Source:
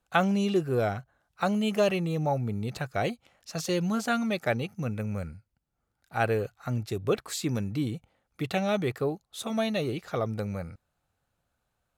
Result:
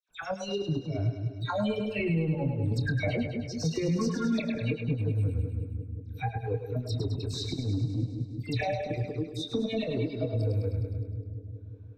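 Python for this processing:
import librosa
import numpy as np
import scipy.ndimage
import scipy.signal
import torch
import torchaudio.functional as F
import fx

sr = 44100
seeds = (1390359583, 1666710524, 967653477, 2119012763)

p1 = fx.noise_reduce_blind(x, sr, reduce_db=30)
p2 = fx.ripple_eq(p1, sr, per_octave=1.6, db=8)
p3 = fx.over_compress(p2, sr, threshold_db=-34.0, ratio=-0.5)
p4 = fx.transient(p3, sr, attack_db=-7, sustain_db=-11)
p5 = fx.air_absorb(p4, sr, metres=190.0)
p6 = fx.doubler(p5, sr, ms=25.0, db=-10.0)
p7 = fx.dispersion(p6, sr, late='lows', ms=89.0, hz=2500.0)
p8 = p7 + fx.echo_split(p7, sr, split_hz=440.0, low_ms=179, high_ms=103, feedback_pct=52, wet_db=-6.0, dry=0)
p9 = fx.band_squash(p8, sr, depth_pct=70)
y = p9 * 10.0 ** (7.5 / 20.0)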